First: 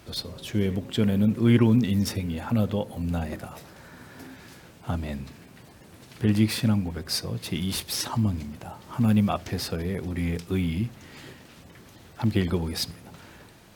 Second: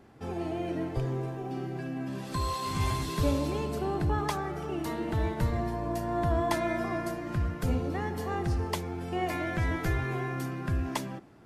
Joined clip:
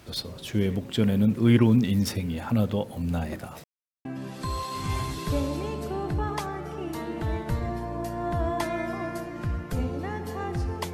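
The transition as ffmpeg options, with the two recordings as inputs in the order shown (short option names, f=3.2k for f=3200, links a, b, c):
-filter_complex "[0:a]apad=whole_dur=10.93,atrim=end=10.93,asplit=2[a][b];[a]atrim=end=3.64,asetpts=PTS-STARTPTS,afade=t=out:st=3.636:d=0.004:c=hsin[c];[b]atrim=start=3.64:end=4.05,asetpts=PTS-STARTPTS,volume=0[d];[1:a]atrim=start=1.96:end=8.84,asetpts=PTS-STARTPTS,afade=t=in:d=0.004:c=hsin[e];[c][d][e]concat=n=3:v=0:a=1"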